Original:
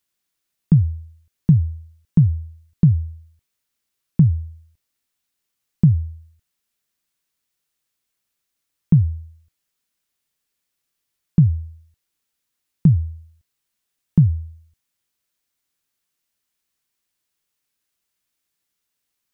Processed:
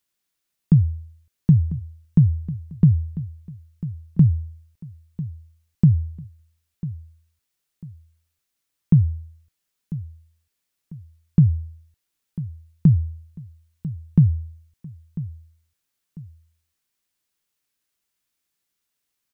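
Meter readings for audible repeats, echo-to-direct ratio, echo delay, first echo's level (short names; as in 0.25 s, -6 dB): 2, -14.5 dB, 0.996 s, -15.0 dB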